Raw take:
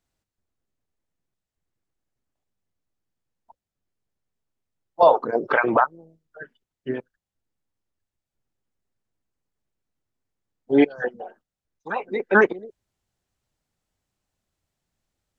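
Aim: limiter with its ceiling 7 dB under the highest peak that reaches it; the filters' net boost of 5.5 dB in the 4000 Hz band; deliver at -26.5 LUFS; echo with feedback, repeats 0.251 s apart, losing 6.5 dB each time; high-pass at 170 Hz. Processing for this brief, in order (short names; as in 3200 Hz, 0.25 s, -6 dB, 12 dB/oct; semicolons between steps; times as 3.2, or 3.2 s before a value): HPF 170 Hz; bell 4000 Hz +7 dB; limiter -10.5 dBFS; feedback echo 0.251 s, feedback 47%, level -6.5 dB; gain -1.5 dB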